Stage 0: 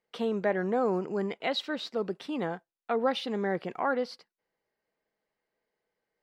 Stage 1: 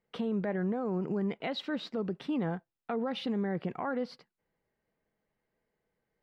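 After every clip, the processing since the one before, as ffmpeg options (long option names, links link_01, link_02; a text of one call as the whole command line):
ffmpeg -i in.wav -af "bass=frequency=250:gain=12,treble=frequency=4000:gain=-9,alimiter=level_in=1dB:limit=-24dB:level=0:latency=1:release=111,volume=-1dB" out.wav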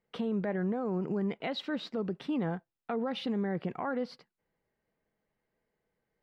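ffmpeg -i in.wav -af anull out.wav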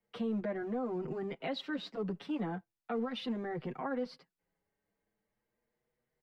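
ffmpeg -i in.wav -filter_complex "[0:a]acrossover=split=210|400|1400[link_01][link_02][link_03][link_04];[link_02]asoftclip=type=hard:threshold=-38dB[link_05];[link_01][link_05][link_03][link_04]amix=inputs=4:normalize=0,asplit=2[link_06][link_07];[link_07]adelay=6.5,afreqshift=0.38[link_08];[link_06][link_08]amix=inputs=2:normalize=1" out.wav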